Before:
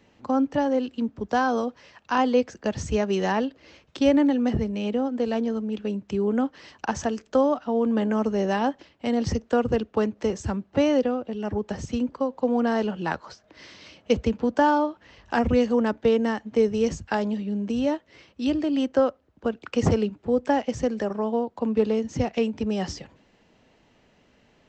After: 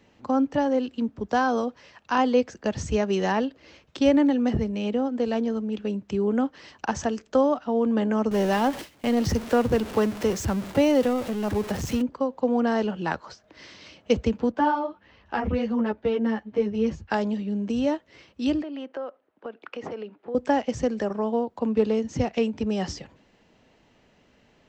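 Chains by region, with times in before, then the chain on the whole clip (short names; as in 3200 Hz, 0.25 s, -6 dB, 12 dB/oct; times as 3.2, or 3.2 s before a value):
8.31–12.02 zero-crossing step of -31 dBFS + gate with hold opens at -30 dBFS, closes at -33 dBFS
14.52–17.1 LPF 3600 Hz + ensemble effect
18.62–20.35 BPF 380–2800 Hz + compressor 3:1, threshold -33 dBFS
whole clip: dry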